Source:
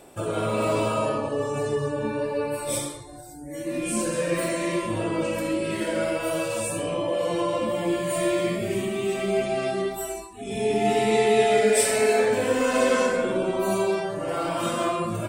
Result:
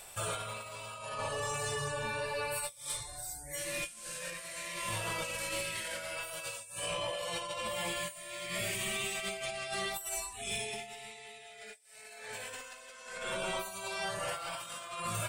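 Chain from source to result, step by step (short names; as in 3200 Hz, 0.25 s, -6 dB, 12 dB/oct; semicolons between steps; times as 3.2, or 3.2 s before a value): 3.58–6.12 CVSD 64 kbps; passive tone stack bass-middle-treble 10-0-10; notches 50/100/150/200 Hz; negative-ratio compressor -41 dBFS, ratio -0.5; soft clip -30 dBFS, distortion -21 dB; gain +3 dB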